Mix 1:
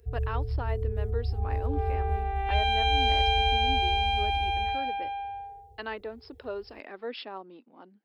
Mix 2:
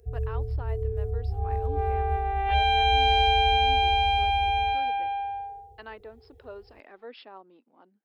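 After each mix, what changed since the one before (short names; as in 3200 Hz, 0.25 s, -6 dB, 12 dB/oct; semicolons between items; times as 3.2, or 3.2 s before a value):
speech -10.0 dB; master: add bell 900 Hz +4.5 dB 2.9 oct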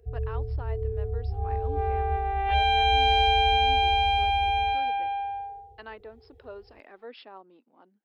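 first sound: add tone controls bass -1 dB, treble -9 dB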